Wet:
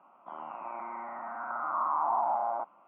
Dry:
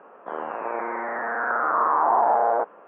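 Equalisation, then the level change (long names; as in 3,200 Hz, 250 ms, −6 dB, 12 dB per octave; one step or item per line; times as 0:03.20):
high-pass filter 97 Hz
high-frequency loss of the air 58 metres
phaser with its sweep stopped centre 1,700 Hz, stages 6
−7.5 dB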